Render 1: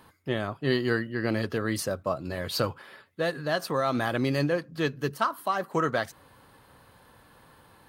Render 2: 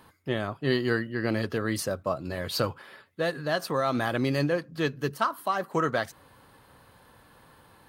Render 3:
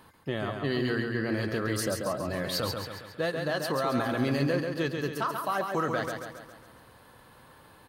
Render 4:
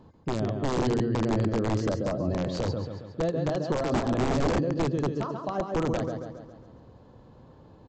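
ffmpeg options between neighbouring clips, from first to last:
-af anull
-filter_complex "[0:a]alimiter=limit=0.106:level=0:latency=1,asplit=2[s0][s1];[s1]aecho=0:1:137|274|411|548|685|822|959:0.562|0.292|0.152|0.0791|0.0411|0.0214|0.0111[s2];[s0][s2]amix=inputs=2:normalize=0"
-af "equalizer=f=1700:t=o:w=1.7:g=-10,aresample=16000,aeval=exprs='(mod(15*val(0)+1,2)-1)/15':c=same,aresample=44100,tiltshelf=f=1100:g=8"

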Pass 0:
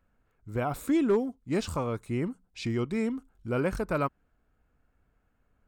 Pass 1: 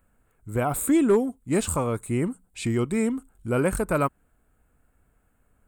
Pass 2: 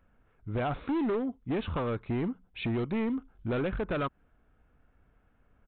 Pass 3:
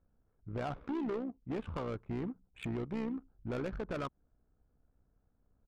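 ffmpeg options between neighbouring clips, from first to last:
-af "highshelf=f=6800:t=q:w=3:g=7.5,volume=1.78"
-af "acompressor=threshold=0.0562:ratio=3,aresample=8000,asoftclip=type=hard:threshold=0.0473,aresample=44100"
-af "tremolo=f=64:d=0.519,adynamicsmooth=sensitivity=7.5:basefreq=920,volume=0.596"

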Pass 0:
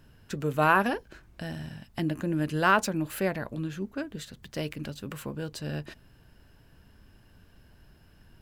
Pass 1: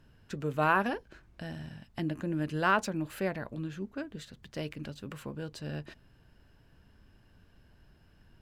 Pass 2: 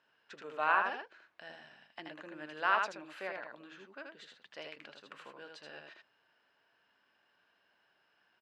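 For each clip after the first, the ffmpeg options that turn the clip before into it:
-af "highshelf=f=9700:g=-11,volume=0.631"
-af "highpass=740,lowpass=4000,aecho=1:1:79:0.631,volume=0.75"

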